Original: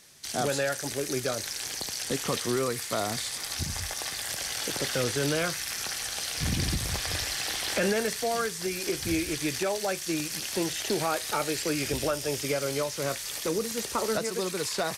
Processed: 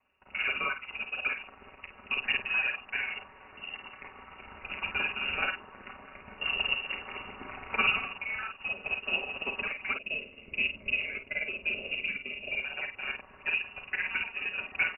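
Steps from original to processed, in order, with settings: time reversed locally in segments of 43 ms; harmonic-percussive split harmonic -6 dB; comb 5.6 ms, depth 58%; time-frequency box 9.94–12.63 s, 910–2200 Hz -16 dB; in parallel at -1 dB: crossover distortion -42 dBFS; on the sum: frequency shift -120 Hz; on a send: early reflections 36 ms -8.5 dB, 51 ms -6 dB; on the sum: frequency inversion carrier 2.8 kHz; upward expansion 1.5:1, over -36 dBFS; trim -4 dB

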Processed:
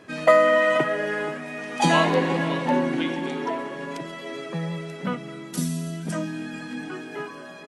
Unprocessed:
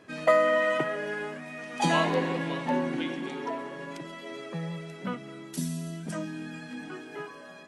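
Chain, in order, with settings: echo from a far wall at 82 m, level -14 dB; trim +5.5 dB

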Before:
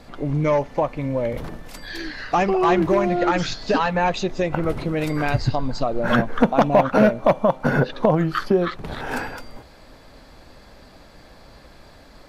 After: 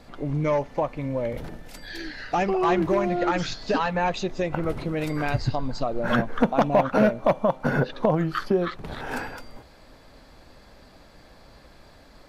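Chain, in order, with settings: 1.36–2.47 s: band-stop 1.1 kHz, Q 5.3; trim -4 dB

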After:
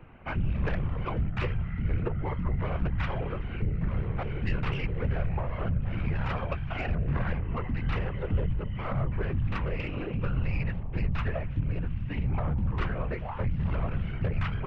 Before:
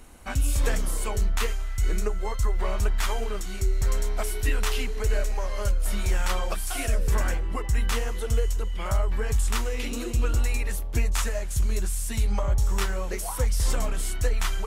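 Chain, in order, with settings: elliptic low-pass 2.7 kHz, stop band 70 dB; saturation -22.5 dBFS, distortion -15 dB; whisper effect

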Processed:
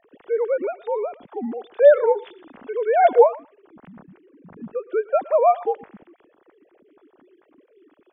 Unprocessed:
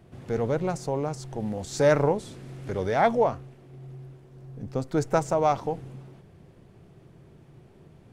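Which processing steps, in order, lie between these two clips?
formants replaced by sine waves; thinning echo 114 ms, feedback 16%, high-pass 1.1 kHz, level -16 dB; trim +6 dB

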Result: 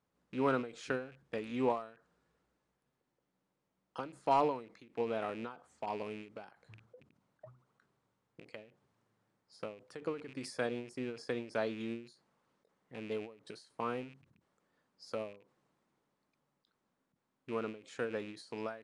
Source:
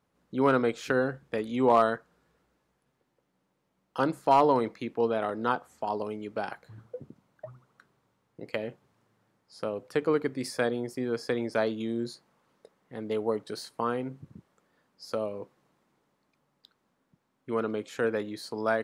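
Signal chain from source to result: rattle on loud lows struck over -43 dBFS, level -32 dBFS; resampled via 22.05 kHz; endings held to a fixed fall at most 130 dB/s; trim -7.5 dB

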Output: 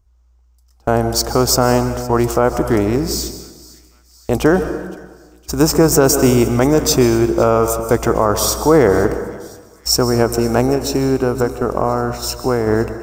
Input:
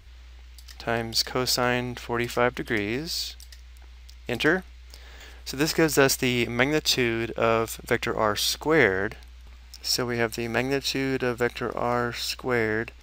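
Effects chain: 10.67–12.67 s: compression 4:1, threshold -25 dBFS, peak gain reduction 6 dB; high-order bell 2.7 kHz -15.5 dB; gate -38 dBFS, range -24 dB; bass shelf 76 Hz +6 dB; feedback echo behind a high-pass 514 ms, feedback 57%, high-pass 2.7 kHz, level -20 dB; plate-style reverb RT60 1.4 s, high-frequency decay 0.65×, pre-delay 115 ms, DRR 10.5 dB; loudness maximiser +13.5 dB; trim -1 dB

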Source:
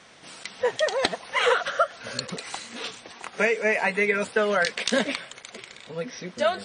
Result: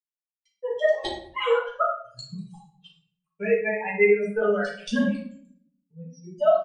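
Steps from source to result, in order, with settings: expander on every frequency bin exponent 3; expander -57 dBFS; low-pass 1.6 kHz 6 dB/octave; comb 4.8 ms, depth 62%; 1.89–4.42 s: rotary cabinet horn 6 Hz; simulated room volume 84 m³, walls mixed, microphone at 1.6 m; trim -2 dB

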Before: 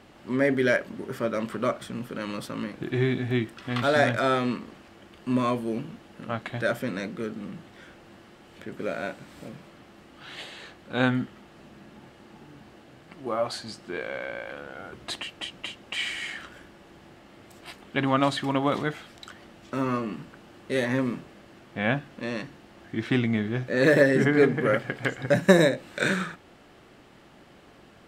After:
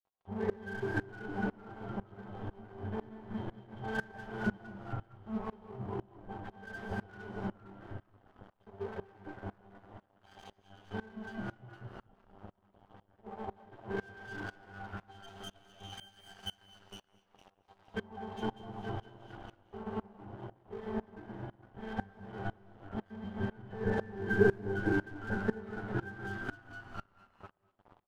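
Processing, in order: chunks repeated in reverse 124 ms, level -0.5 dB; in parallel at +1.5 dB: compression, threshold -33 dBFS, peak gain reduction 21.5 dB; on the sum: reverb removal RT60 0.79 s; monotone LPC vocoder at 8 kHz 220 Hz; bass shelf 400 Hz +3.5 dB; pitch-class resonator G, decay 0.37 s; on a send: frequency-shifting echo 459 ms, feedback 39%, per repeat -95 Hz, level -5 dB; on the sum: crossover distortion -50 dBFS; peaking EQ 820 Hz +12 dB 1.3 oct; gated-style reverb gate 260 ms rising, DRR 7.5 dB; sawtooth tremolo in dB swelling 2 Hz, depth 23 dB; trim +6.5 dB

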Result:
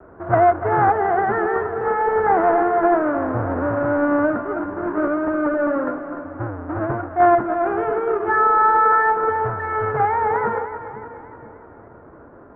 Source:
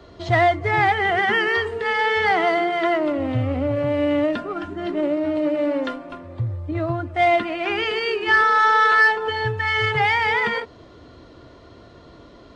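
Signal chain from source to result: square wave that keeps the level; Chebyshev low-pass 1.5 kHz, order 4; bass shelf 190 Hz -10 dB; on a send: two-band feedback delay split 370 Hz, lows 490 ms, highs 295 ms, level -11 dB; on the sum: vibrato 0.46 Hz 13 cents

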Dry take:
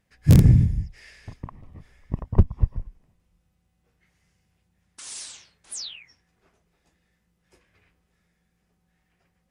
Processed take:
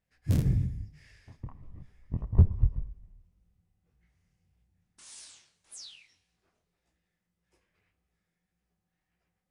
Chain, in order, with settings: 1.39–5.03 s: bass shelf 230 Hz +11 dB; two-slope reverb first 0.84 s, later 2.5 s, from -21 dB, DRR 14 dB; detune thickener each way 60 cents; trim -8 dB

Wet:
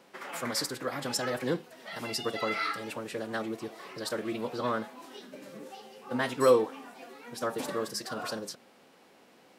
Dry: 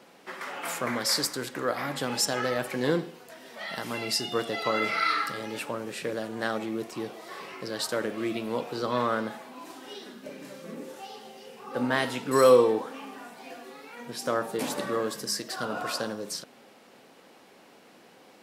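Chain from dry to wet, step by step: time stretch by phase-locked vocoder 0.52×; trim -2.5 dB

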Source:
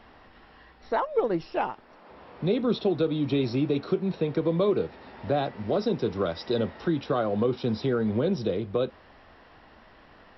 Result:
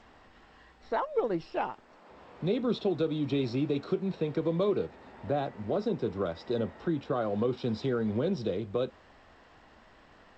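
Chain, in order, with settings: 4.85–7.20 s: treble shelf 3.8 kHz -> 3 kHz -9.5 dB; trim -4 dB; G.722 64 kbps 16 kHz

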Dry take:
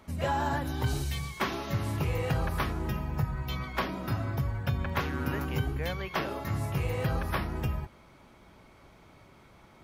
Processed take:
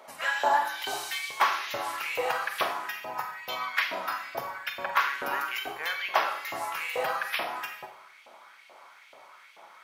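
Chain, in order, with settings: LFO high-pass saw up 2.3 Hz 550–2900 Hz; Schroeder reverb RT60 0.57 s, combs from 32 ms, DRR 6.5 dB; trim +3.5 dB

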